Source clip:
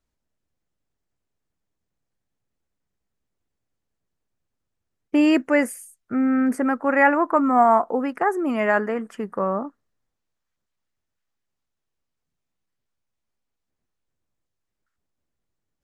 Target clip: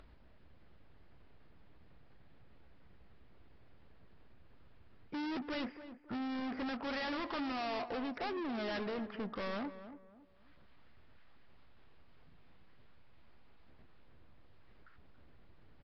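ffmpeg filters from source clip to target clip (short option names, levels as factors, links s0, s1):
-filter_complex "[0:a]lowpass=3100,equalizer=f=62:t=o:w=1.1:g=4.5,acompressor=mode=upward:threshold=0.01:ratio=2.5,aresample=11025,asoftclip=type=tanh:threshold=0.0158,aresample=44100,asplit=2[s0][s1];[s1]adelay=278,lowpass=f=1300:p=1,volume=0.282,asplit=2[s2][s3];[s3]adelay=278,lowpass=f=1300:p=1,volume=0.34,asplit=2[s4][s5];[s5]adelay=278,lowpass=f=1300:p=1,volume=0.34,asplit=2[s6][s7];[s7]adelay=278,lowpass=f=1300:p=1,volume=0.34[s8];[s0][s2][s4][s6][s8]amix=inputs=5:normalize=0,volume=0.841" -ar 32000 -c:a aac -b:a 32k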